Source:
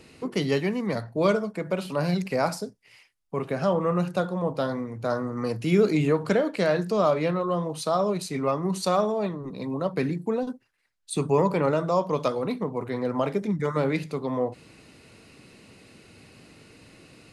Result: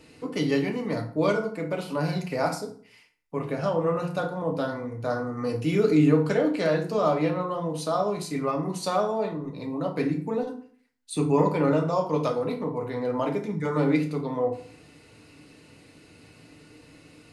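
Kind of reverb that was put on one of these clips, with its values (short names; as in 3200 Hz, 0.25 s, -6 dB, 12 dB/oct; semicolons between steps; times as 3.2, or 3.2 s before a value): FDN reverb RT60 0.49 s, low-frequency decay 1.1×, high-frequency decay 0.7×, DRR 1.5 dB; gain -3.5 dB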